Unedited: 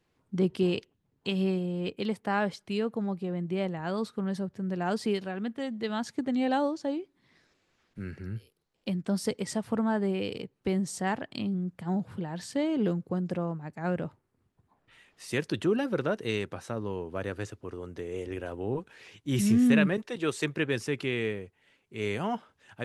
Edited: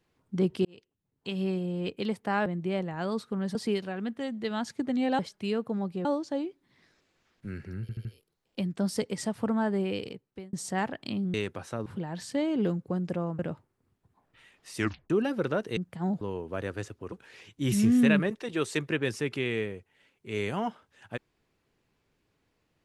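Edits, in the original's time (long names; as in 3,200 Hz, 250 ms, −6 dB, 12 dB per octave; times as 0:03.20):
0:00.65–0:01.70: fade in
0:02.46–0:03.32: move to 0:06.58
0:04.41–0:04.94: remove
0:08.34: stutter 0.08 s, 4 plays
0:10.24–0:10.82: fade out
0:11.63–0:12.07: swap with 0:16.31–0:16.83
0:13.60–0:13.93: remove
0:15.32: tape stop 0.32 s
0:17.74–0:18.79: remove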